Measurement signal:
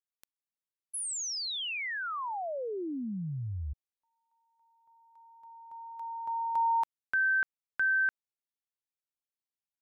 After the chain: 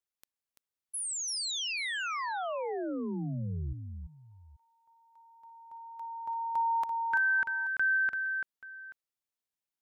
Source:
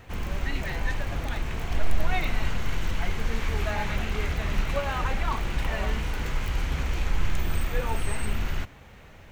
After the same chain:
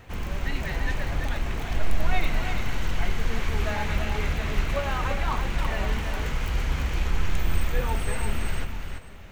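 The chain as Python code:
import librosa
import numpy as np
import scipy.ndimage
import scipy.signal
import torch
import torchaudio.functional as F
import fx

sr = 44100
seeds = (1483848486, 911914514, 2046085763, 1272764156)

y = fx.echo_multitap(x, sr, ms=(338, 832), db=(-6.0, -19.0))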